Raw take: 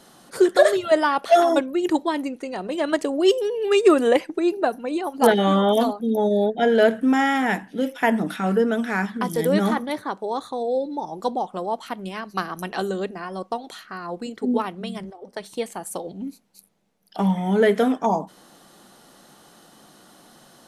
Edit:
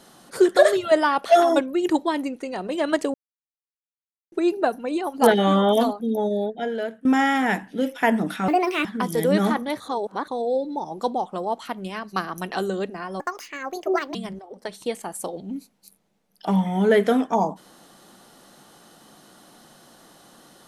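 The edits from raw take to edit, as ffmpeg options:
-filter_complex "[0:a]asplit=10[s0][s1][s2][s3][s4][s5][s6][s7][s8][s9];[s0]atrim=end=3.14,asetpts=PTS-STARTPTS,afade=t=out:st=3.136:d=0.004:c=hsin[s10];[s1]atrim=start=3.14:end=4.32,asetpts=PTS-STARTPTS,volume=0[s11];[s2]atrim=start=4.32:end=7.05,asetpts=PTS-STARTPTS,afade=t=in:d=0.004:c=hsin,afade=t=out:st=1.52:d=1.21:silence=0.0841395[s12];[s3]atrim=start=7.05:end=8.484,asetpts=PTS-STARTPTS,afade=t=in:d=0.004:c=hsin:silence=0.0841395[s13];[s4]atrim=start=8.48:end=9.06,asetpts=PTS-STARTPTS,asetrate=69237,aresample=44100[s14];[s5]atrim=start=9.056:end=10.012[s15];[s6]atrim=start=10.008:end=10.492,asetpts=PTS-STARTPTS,areverse[s16];[s7]atrim=start=10.488:end=13.414[s17];[s8]atrim=start=13.41:end=14.86,asetpts=PTS-STARTPTS,asetrate=67473,aresample=44100,atrim=end_sample=41794,asetpts=PTS-STARTPTS[s18];[s9]atrim=start=14.856[s19];[s10][s11][s12][s13]concat=n=4:v=0:a=1[s20];[s20][s14]acrossfade=d=0.004:c1=hsin:c2=hsin[s21];[s21][s15]acrossfade=d=0.004:c1=hsin:c2=hsin[s22];[s22][s16]acrossfade=d=0.004:c1=hsin:c2=hsin[s23];[s23][s17]acrossfade=d=0.004:c1=hsin:c2=hsin[s24];[s24][s18]acrossfade=d=0.004:c1=hsin:c2=hsin[s25];[s25][s19]acrossfade=d=0.004:c1=hsin:c2=hsin"

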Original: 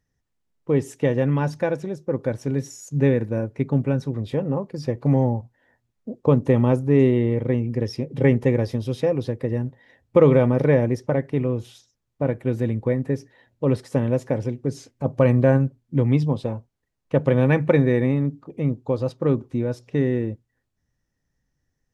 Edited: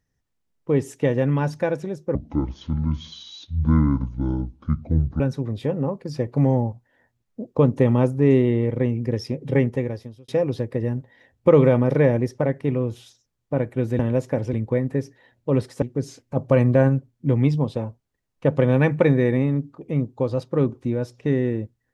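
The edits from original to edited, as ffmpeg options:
-filter_complex "[0:a]asplit=7[s0][s1][s2][s3][s4][s5][s6];[s0]atrim=end=2.154[s7];[s1]atrim=start=2.15:end=3.89,asetpts=PTS-STARTPTS,asetrate=25137,aresample=44100,atrim=end_sample=134621,asetpts=PTS-STARTPTS[s8];[s2]atrim=start=3.886:end=8.97,asetpts=PTS-STARTPTS,afade=t=out:st=4.224:d=0.86[s9];[s3]atrim=start=8.97:end=12.682,asetpts=PTS-STARTPTS,afade=t=in:d=0.004:c=hsin[s10];[s4]atrim=start=13.968:end=14.512[s11];[s5]atrim=start=12.678:end=13.972[s12];[s6]atrim=start=14.508[s13];[s7][s8]acrossfade=d=0.004:c1=hsin:c2=hsin[s14];[s9][s10]concat=n=2:v=0:a=1[s15];[s14][s15]acrossfade=d=0.004:c1=hsin:c2=hsin[s16];[s16][s11]acrossfade=d=0.004:c1=hsin:c2=hsin[s17];[s17][s12]acrossfade=d=0.004:c1=hsin:c2=hsin[s18];[s18][s13]acrossfade=d=0.004:c1=hsin:c2=hsin"

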